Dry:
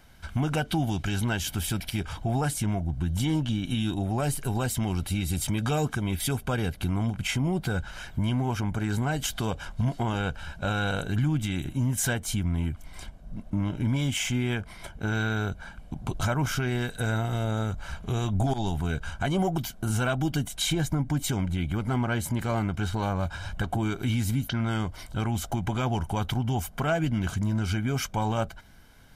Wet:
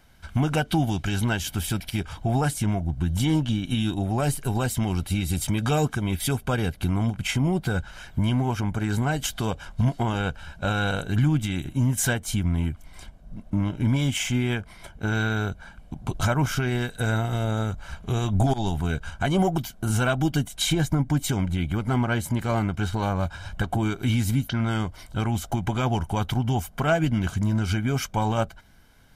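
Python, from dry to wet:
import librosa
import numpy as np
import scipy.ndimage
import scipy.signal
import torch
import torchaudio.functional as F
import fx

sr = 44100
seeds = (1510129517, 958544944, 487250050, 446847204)

y = fx.upward_expand(x, sr, threshold_db=-36.0, expansion=1.5)
y = y * 10.0 ** (5.0 / 20.0)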